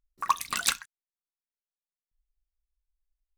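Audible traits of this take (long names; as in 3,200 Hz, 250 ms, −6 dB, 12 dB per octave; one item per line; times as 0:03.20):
background noise floor −97 dBFS
spectral slope 0.0 dB per octave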